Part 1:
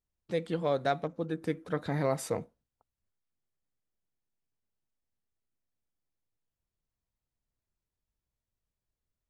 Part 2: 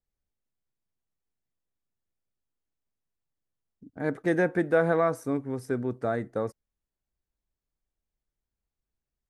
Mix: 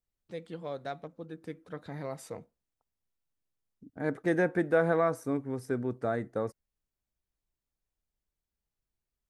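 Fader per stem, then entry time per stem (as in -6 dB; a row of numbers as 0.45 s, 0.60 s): -9.0 dB, -2.5 dB; 0.00 s, 0.00 s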